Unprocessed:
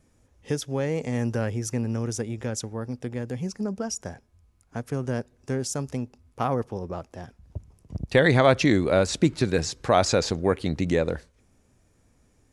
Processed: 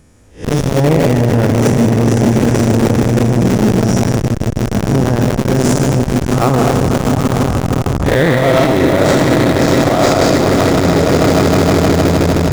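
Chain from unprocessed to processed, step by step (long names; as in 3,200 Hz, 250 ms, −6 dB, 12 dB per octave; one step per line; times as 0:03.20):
spectrum smeared in time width 156 ms
on a send: echo that builds up and dies away 156 ms, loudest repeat 5, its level −11 dB
on the sum: comb and all-pass reverb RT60 0.4 s, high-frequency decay 0.5×, pre-delay 120 ms, DRR 4 dB
in parallel at −3.5 dB: comparator with hysteresis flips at −31 dBFS
on the sum: boost into a limiter +17 dB
saturating transformer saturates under 300 Hz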